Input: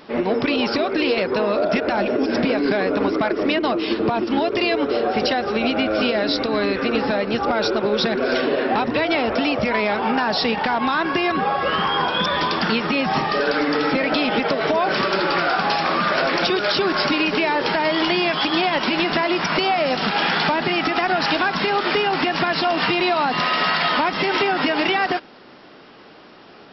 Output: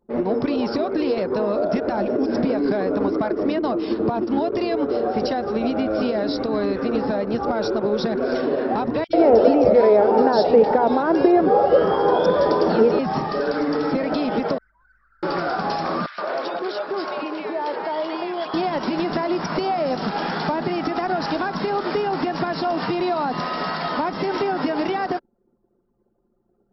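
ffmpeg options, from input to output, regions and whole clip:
-filter_complex "[0:a]asettb=1/sr,asplit=3[s0][s1][s2];[s0]atrim=end=9.044[s3];[s1]atrim=start=9.04:end=12.99,asetpts=PTS-STARTPTS,afade=t=in:d=0.004:c=qsin,afade=t=out:st=3.946:d=0.004:c=qsin,equalizer=f=470:t=o:w=1.3:g=13.5,bandreject=f=1100:w=10,acrossover=split=200|2500[s4][s5][s6];[s4]adelay=50[s7];[s5]adelay=90[s8];[s7][s8][s6]amix=inputs=3:normalize=0,atrim=end_sample=174195[s9];[s2]atrim=start=12.986[s10];[s3][s9]acrossfade=d=0.004:c1=hsin:c2=qsin[s11];[s11][s10]acrossfade=d=0.004:c1=qsin:c2=hsin,asettb=1/sr,asplit=3[s12][s13][s14];[s12]atrim=end=14.584[s15];[s13]atrim=start=14.58:end=15.23,asetpts=PTS-STARTPTS,afade=t=in:d=0.004:c=qsin,afade=t=out:st=0.646:d=0.004:c=qsin,asuperpass=centerf=1700:order=4:qfactor=1.9,aeval=exprs='(tanh(100*val(0)+0.05)-tanh(0.05))/100':c=same,aeval=exprs='val(0)+0.00112*(sin(2*PI*50*n/s)+sin(2*PI*2*50*n/s)/2+sin(2*PI*3*50*n/s)/3+sin(2*PI*4*50*n/s)/4+sin(2*PI*5*50*n/s)/5)':c=same[s16];[s14]atrim=start=15.226[s17];[s15][s16]acrossfade=d=0.004:c1=hsin:c2=qsin[s18];[s18][s17]acrossfade=d=0.004:c1=qsin:c2=hsin,asettb=1/sr,asplit=3[s19][s20][s21];[s19]atrim=end=16.064[s22];[s20]atrim=start=16.06:end=18.54,asetpts=PTS-STARTPTS,afade=t=in:d=0.004:c=qsin,afade=t=out:st=2.476:d=0.004:c=qsin,highpass=460,lowpass=3500,acrossover=split=1700[s23][s24];[s23]adelay=120[s25];[s25][s24]amix=inputs=2:normalize=0,atrim=end_sample=109368[s26];[s21]atrim=start=18.536[s27];[s22][s26]acrossfade=d=0.004:c1=hsin:c2=qsin[s28];[s28][s27]acrossfade=d=0.004:c1=qsin:c2=hsin,anlmdn=15.8,equalizer=f=2700:w=0.76:g=-15"

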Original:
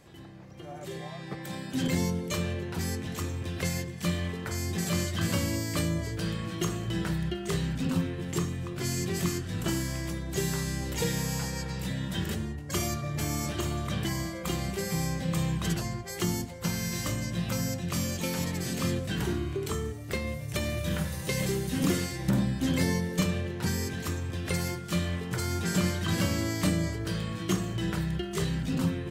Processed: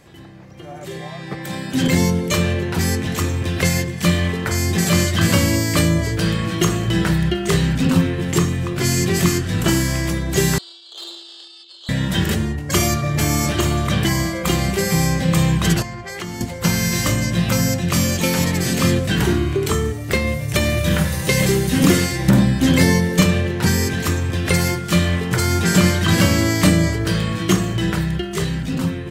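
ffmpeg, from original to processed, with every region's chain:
-filter_complex "[0:a]asettb=1/sr,asplit=3[s0][s1][s2];[s0]atrim=end=10.584[s3];[s1]atrim=start=10.58:end=11.89,asetpts=PTS-STARTPTS,afade=t=in:d=0.004:c=qsin,afade=t=out:st=1.306:d=0.004:c=qsin,asuperpass=centerf=3400:order=8:qfactor=2.3,aeval=exprs='(tanh(100*val(0)+0.6)-tanh(0.6))/100':c=same,afreqshift=340[s4];[s2]atrim=start=11.886[s5];[s3][s4]acrossfade=d=0.004:c1=hsin:c2=qsin[s6];[s6][s5]acrossfade=d=0.004:c1=qsin:c2=hsin,asettb=1/sr,asplit=3[s7][s8][s9];[s7]atrim=end=15.824[s10];[s8]atrim=start=15.82:end=16.41,asetpts=PTS-STARTPTS,afade=t=in:d=0.004:c=qsin,afade=t=out:st=0.586:d=0.004:c=qsin,lowpass=f=1400:p=1,tiltshelf=f=820:g=-6,acompressor=threshold=0.01:ratio=3:attack=3.2:release=140:knee=1:detection=peak[s11];[s9]atrim=start=16.406[s12];[s10][s11]acrossfade=d=0.004:c1=hsin:c2=qsin[s13];[s13][s12]acrossfade=d=0.004:c1=qsin:c2=hsin,equalizer=f=2000:w=1.5:g=2,dynaudnorm=f=290:g=11:m=2,volume=2.11"

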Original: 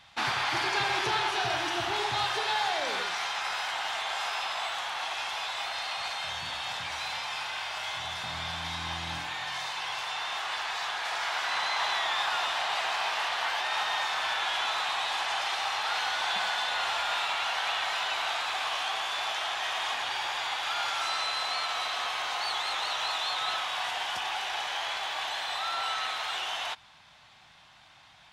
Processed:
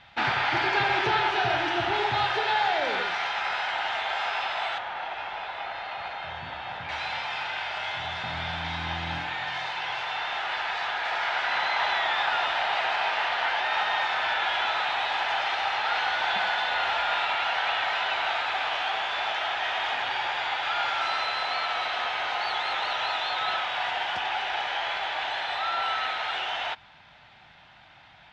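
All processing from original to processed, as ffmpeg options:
-filter_complex "[0:a]asettb=1/sr,asplit=3[s0][s1][s2];[s0]atrim=end=4.784[s3];[s1]atrim=start=4.78:end=6.89,asetpts=PTS-STARTPTS,afade=t=in:d=0.004:c=qsin,afade=t=out:st=2.106:d=0.004:c=qsin,acrossover=split=5500[s4][s5];[s5]acompressor=threshold=0.00158:ratio=4:attack=1:release=60[s6];[s4][s6]amix=inputs=2:normalize=0,highshelf=f=2100:g=-9.5,aeval=exprs='sgn(val(0))*max(abs(val(0))-0.00106,0)':c=same[s7];[s2]atrim=start=6.886[s8];[s3][s7]acrossfade=d=0.004:c1=hsin:c2=qsin[s9];[s9][s8]acrossfade=d=0.004:c1=qsin:c2=hsin,lowpass=2800,bandreject=f=1100:w=6.6,volume=1.88"

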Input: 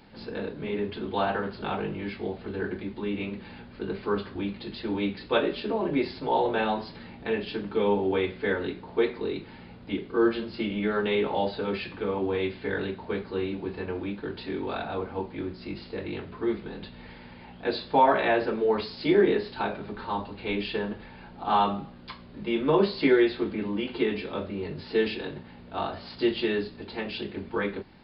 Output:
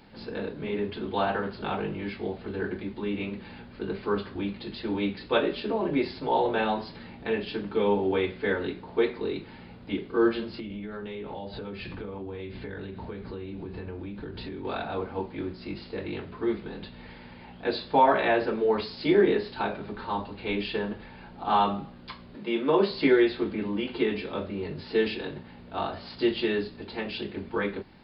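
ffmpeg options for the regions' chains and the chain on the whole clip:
-filter_complex "[0:a]asettb=1/sr,asplit=3[s0][s1][s2];[s0]atrim=end=10.594[s3];[s1]atrim=start=10.59:end=14.65,asetpts=PTS-STARTPTS,afade=t=in:d=0.004:c=qsin,afade=t=out:st=4.056:d=0.004:c=qsin,lowshelf=f=170:g=12,acompressor=threshold=0.0224:ratio=16:attack=3.2:release=140:knee=1:detection=peak[s4];[s2]atrim=start=14.646[s5];[s3][s4]acrossfade=d=0.004:c1=hsin:c2=qsin[s6];[s6][s5]acrossfade=d=0.004:c1=qsin:c2=hsin,asettb=1/sr,asplit=3[s7][s8][s9];[s7]atrim=end=22.354[s10];[s8]atrim=start=22.35:end=22.91,asetpts=PTS-STARTPTS,afade=t=in:d=0.004:c=qsin,afade=t=out:st=0.556:d=0.004:c=qsin,highpass=210,acompressor=mode=upward:threshold=0.01:ratio=2.5:attack=3.2:release=140:knee=2.83:detection=peak[s11];[s9]atrim=start=22.906[s12];[s10][s11]acrossfade=d=0.004:c1=hsin:c2=qsin[s13];[s13][s12]acrossfade=d=0.004:c1=qsin:c2=hsin"

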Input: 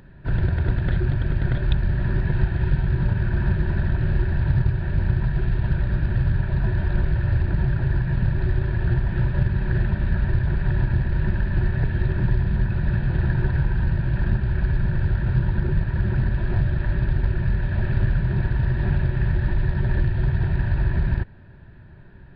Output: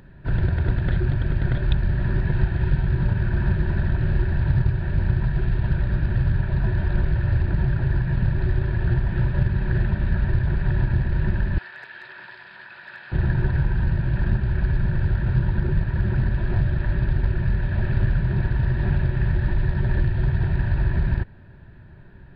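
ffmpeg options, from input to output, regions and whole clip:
-filter_complex "[0:a]asettb=1/sr,asplit=3[s0][s1][s2];[s0]atrim=end=11.584[s3];[s1]atrim=start=11.58:end=13.12,asetpts=PTS-STARTPTS,afade=t=in:d=0.004:c=qsin,afade=t=out:st=1.536:d=0.004:c=qsin,highpass=1200,asoftclip=type=hard:threshold=0.0299[s4];[s2]atrim=start=13.116[s5];[s3][s4]acrossfade=d=0.004:c1=hsin:c2=qsin[s6];[s6][s5]acrossfade=d=0.004:c1=qsin:c2=hsin"

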